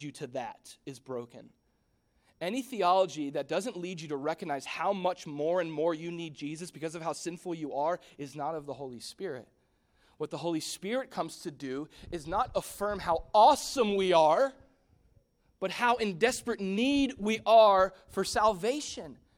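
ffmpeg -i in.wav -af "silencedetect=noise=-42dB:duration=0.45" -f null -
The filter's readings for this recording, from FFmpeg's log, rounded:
silence_start: 1.40
silence_end: 2.41 | silence_duration: 1.01
silence_start: 9.44
silence_end: 10.20 | silence_duration: 0.77
silence_start: 14.50
silence_end: 15.62 | silence_duration: 1.11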